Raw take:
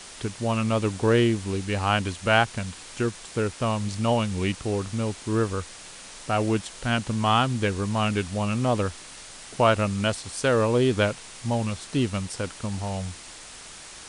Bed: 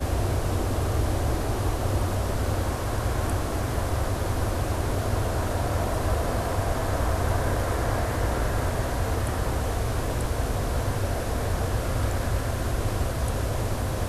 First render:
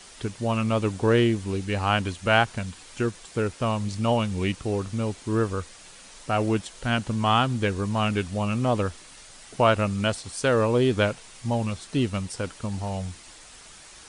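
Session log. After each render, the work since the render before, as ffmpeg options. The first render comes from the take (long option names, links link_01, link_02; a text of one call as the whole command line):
ffmpeg -i in.wav -af "afftdn=noise_reduction=6:noise_floor=-43" out.wav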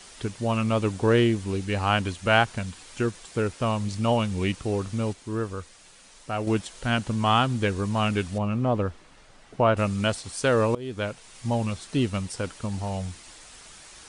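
ffmpeg -i in.wav -filter_complex "[0:a]asettb=1/sr,asplit=3[link_01][link_02][link_03];[link_01]atrim=end=8.384[link_04];[link_02]atrim=start=8.38:end=9.77,asetpts=PTS-STARTPTS,afade=type=in:duration=0.004:curve=qsin,afade=type=out:start_time=1.386:duration=0.004:curve=qsin,lowpass=frequency=1300:poles=1[link_05];[link_03]atrim=start=9.766[link_06];[link_04][link_05]acrossfade=duration=0.004:curve1=hsin:curve2=qsin[link_07];[link_07][link_06]acrossfade=duration=0.004:curve1=qsin:curve2=hsin,asplit=4[link_08][link_09][link_10][link_11];[link_08]atrim=end=5.132[link_12];[link_09]atrim=start=5.128:end=6.472,asetpts=PTS-STARTPTS,volume=-5dB[link_13];[link_10]atrim=start=6.468:end=10.75,asetpts=PTS-STARTPTS,afade=type=out:start_time=4.278:duration=0.004:curve=hsin:silence=0.0891251[link_14];[link_11]atrim=start=10.75,asetpts=PTS-STARTPTS,afade=type=in:duration=0.71:silence=0.0891251[link_15];[link_12][link_13]acrossfade=duration=0.004:curve1=hsin:curve2=hsin[link_16];[link_14][link_15]concat=n=2:v=0:a=1[link_17];[link_16][link_17]acrossfade=duration=0.004:curve1=hsin:curve2=hsin" out.wav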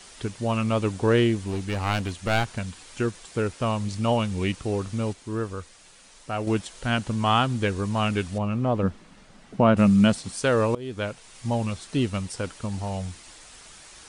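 ffmpeg -i in.wav -filter_complex "[0:a]asettb=1/sr,asplit=3[link_01][link_02][link_03];[link_01]atrim=end=1.474[link_04];[link_02]atrim=start=1.47:end=2.58,asetpts=PTS-STARTPTS,afade=type=in:duration=0.004:curve=qsin,afade=type=out:start_time=1.106:duration=0.004:curve=qsin,aeval=exprs='clip(val(0),-1,0.0398)':channel_layout=same[link_05];[link_03]atrim=start=2.576[link_06];[link_04][link_05]acrossfade=duration=0.004:curve1=hsin:curve2=qsin[link_07];[link_07][link_06]acrossfade=duration=0.004:curve1=qsin:curve2=hsin,asettb=1/sr,asplit=3[link_08][link_09][link_10];[link_08]atrim=end=8.834[link_11];[link_09]atrim=start=8.83:end=10.39,asetpts=PTS-STARTPTS,afade=type=in:duration=0.004:curve=qsin,afade=type=out:start_time=1.556:duration=0.004:curve=qsin,equalizer=frequency=200:width_type=o:width=0.77:gain=12.5[link_12];[link_10]atrim=start=10.386[link_13];[link_11][link_12]acrossfade=duration=0.004:curve1=hsin:curve2=qsin[link_14];[link_14][link_13]acrossfade=duration=0.004:curve1=qsin:curve2=hsin" out.wav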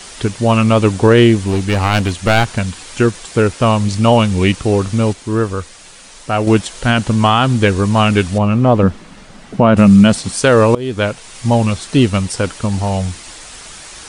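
ffmpeg -i in.wav -af "alimiter=level_in=13dB:limit=-1dB:release=50:level=0:latency=1" out.wav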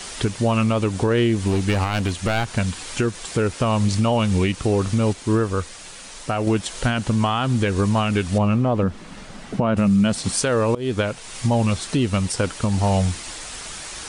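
ffmpeg -i in.wav -af "acompressor=threshold=-11dB:ratio=6,alimiter=limit=-11dB:level=0:latency=1:release=313" out.wav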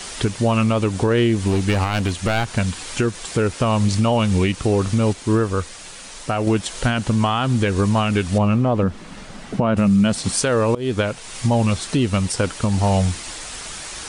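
ffmpeg -i in.wav -af "volume=1.5dB" out.wav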